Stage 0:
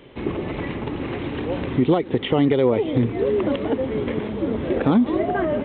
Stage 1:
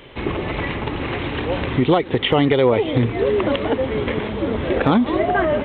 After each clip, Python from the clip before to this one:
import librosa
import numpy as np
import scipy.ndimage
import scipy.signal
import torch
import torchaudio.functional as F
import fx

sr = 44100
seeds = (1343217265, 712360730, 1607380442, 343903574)

y = fx.peak_eq(x, sr, hz=250.0, db=-8.5, octaves=2.5)
y = y * librosa.db_to_amplitude(8.5)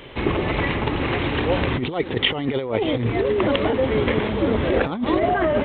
y = fx.over_compress(x, sr, threshold_db=-19.0, ratio=-0.5)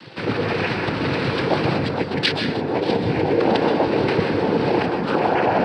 y = fx.noise_vocoder(x, sr, seeds[0], bands=8)
y = fx.rev_plate(y, sr, seeds[1], rt60_s=0.84, hf_ratio=0.5, predelay_ms=115, drr_db=3.5)